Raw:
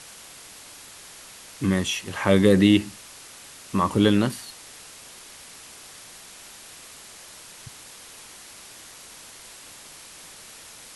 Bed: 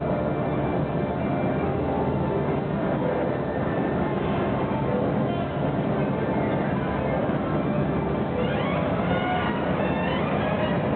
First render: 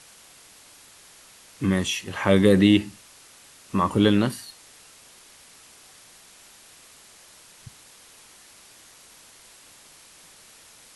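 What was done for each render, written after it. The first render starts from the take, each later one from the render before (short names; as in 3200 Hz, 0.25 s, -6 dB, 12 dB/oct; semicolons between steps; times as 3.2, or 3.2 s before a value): noise print and reduce 6 dB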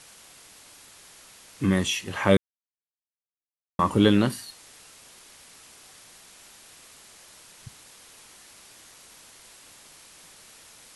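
2.37–3.79 mute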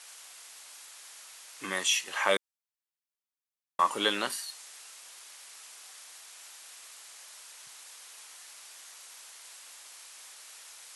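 HPF 770 Hz 12 dB/oct; dynamic EQ 7200 Hz, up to +4 dB, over -53 dBFS, Q 1.1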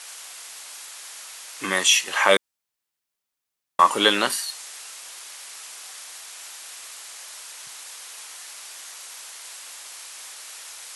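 gain +9.5 dB; limiter -2 dBFS, peak gain reduction 1 dB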